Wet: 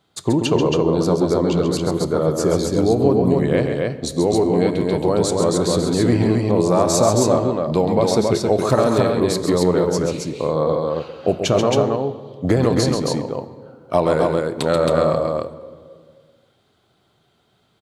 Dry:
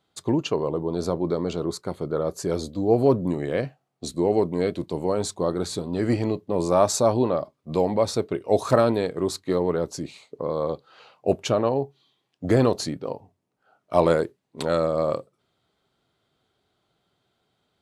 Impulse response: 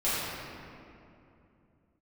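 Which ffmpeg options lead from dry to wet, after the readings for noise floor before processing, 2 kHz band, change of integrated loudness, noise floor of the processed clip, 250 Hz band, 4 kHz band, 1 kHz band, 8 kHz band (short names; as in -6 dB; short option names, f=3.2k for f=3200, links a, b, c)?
-75 dBFS, +6.5 dB, +6.0 dB, -63 dBFS, +7.5 dB, +8.0 dB, +5.5 dB, +8.0 dB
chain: -filter_complex "[0:a]equalizer=f=130:w=1.5:g=2.5,acompressor=threshold=-20dB:ratio=6,aecho=1:1:134.1|271.1:0.447|0.708,asplit=2[a][b];[1:a]atrim=start_sample=2205,asetrate=70560,aresample=44100[c];[b][c]afir=irnorm=-1:irlink=0,volume=-21dB[d];[a][d]amix=inputs=2:normalize=0,volume=6.5dB"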